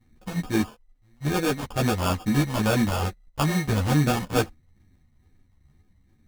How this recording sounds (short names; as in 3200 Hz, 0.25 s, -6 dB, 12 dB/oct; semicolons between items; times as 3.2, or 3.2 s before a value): a buzz of ramps at a fixed pitch in blocks of 16 samples; phasing stages 4, 2.3 Hz, lowest notch 370–1800 Hz; aliases and images of a low sample rate 2000 Hz, jitter 0%; a shimmering, thickened sound